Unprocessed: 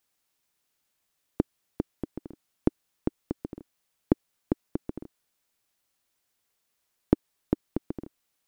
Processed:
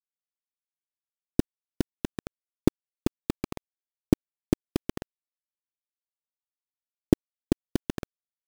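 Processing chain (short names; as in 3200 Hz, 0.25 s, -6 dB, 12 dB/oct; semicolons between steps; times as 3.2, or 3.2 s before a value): tilt shelf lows +9.5 dB; vibrato 0.46 Hz 55 cents; bit-crush 4-bit; gain -5 dB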